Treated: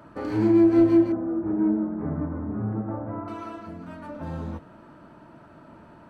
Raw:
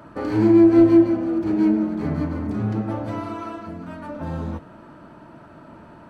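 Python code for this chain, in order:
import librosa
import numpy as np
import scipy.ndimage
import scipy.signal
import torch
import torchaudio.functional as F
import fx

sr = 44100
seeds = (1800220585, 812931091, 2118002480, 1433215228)

y = fx.lowpass(x, sr, hz=1500.0, slope=24, at=(1.12, 3.28))
y = F.gain(torch.from_numpy(y), -4.5).numpy()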